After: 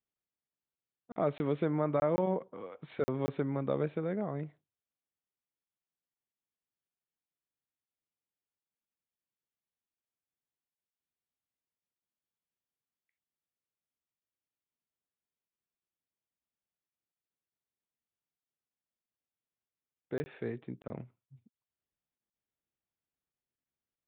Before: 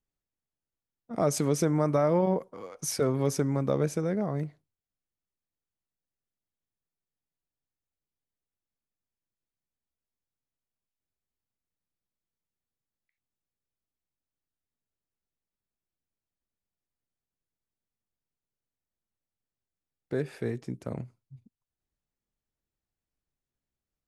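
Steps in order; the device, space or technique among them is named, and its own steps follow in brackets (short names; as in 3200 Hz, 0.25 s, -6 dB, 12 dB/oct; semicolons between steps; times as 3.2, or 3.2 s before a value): call with lost packets (HPF 160 Hz 6 dB/oct; downsampling 8000 Hz; packet loss random); 2.41–2.82 low shelf 470 Hz +5.5 dB; gain -4 dB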